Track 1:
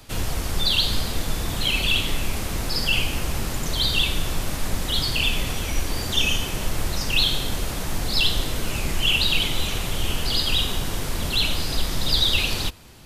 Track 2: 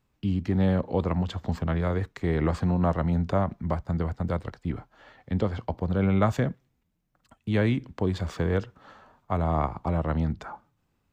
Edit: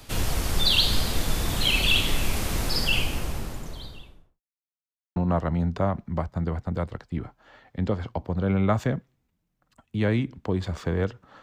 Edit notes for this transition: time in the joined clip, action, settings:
track 1
2.55–4.41 studio fade out
4.41–5.16 mute
5.16 switch to track 2 from 2.69 s

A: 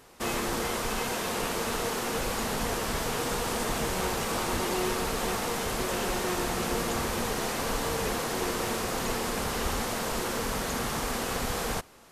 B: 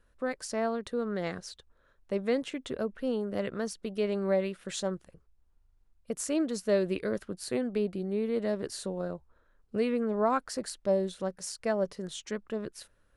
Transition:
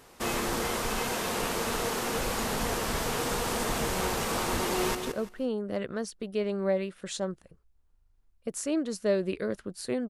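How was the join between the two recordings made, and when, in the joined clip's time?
A
4.62–4.95 echo throw 0.17 s, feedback 25%, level -7.5 dB
4.95 switch to B from 2.58 s

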